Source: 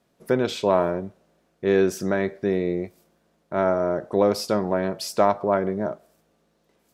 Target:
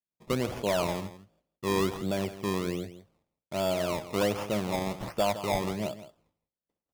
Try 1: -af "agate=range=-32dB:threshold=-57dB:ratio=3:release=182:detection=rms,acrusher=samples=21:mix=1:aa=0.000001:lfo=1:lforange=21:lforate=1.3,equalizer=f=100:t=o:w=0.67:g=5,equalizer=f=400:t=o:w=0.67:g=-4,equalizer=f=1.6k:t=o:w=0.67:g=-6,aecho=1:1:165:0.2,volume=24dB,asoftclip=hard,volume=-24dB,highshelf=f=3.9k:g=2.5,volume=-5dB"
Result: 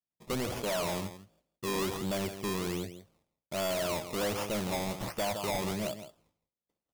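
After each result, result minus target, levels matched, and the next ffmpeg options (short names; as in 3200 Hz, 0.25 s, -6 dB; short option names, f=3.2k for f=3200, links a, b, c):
overloaded stage: distortion +11 dB; 8000 Hz band +5.5 dB
-af "agate=range=-32dB:threshold=-57dB:ratio=3:release=182:detection=rms,acrusher=samples=21:mix=1:aa=0.000001:lfo=1:lforange=21:lforate=1.3,equalizer=f=100:t=o:w=0.67:g=5,equalizer=f=400:t=o:w=0.67:g=-4,equalizer=f=1.6k:t=o:w=0.67:g=-6,aecho=1:1:165:0.2,volume=14dB,asoftclip=hard,volume=-14dB,highshelf=f=3.9k:g=2.5,volume=-5dB"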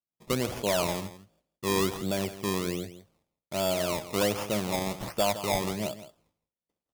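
8000 Hz band +5.5 dB
-af "agate=range=-32dB:threshold=-57dB:ratio=3:release=182:detection=rms,acrusher=samples=21:mix=1:aa=0.000001:lfo=1:lforange=21:lforate=1.3,equalizer=f=100:t=o:w=0.67:g=5,equalizer=f=400:t=o:w=0.67:g=-4,equalizer=f=1.6k:t=o:w=0.67:g=-6,aecho=1:1:165:0.2,volume=14dB,asoftclip=hard,volume=-14dB,highshelf=f=3.9k:g=-5.5,volume=-5dB"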